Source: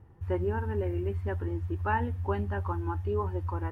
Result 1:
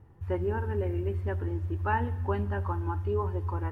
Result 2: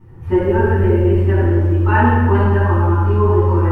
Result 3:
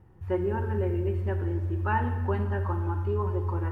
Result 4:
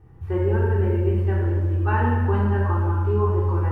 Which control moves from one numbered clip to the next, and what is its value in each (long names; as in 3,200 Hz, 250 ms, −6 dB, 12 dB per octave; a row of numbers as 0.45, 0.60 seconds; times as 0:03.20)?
rectangular room, microphone at: 0.31, 11, 0.99, 3.6 metres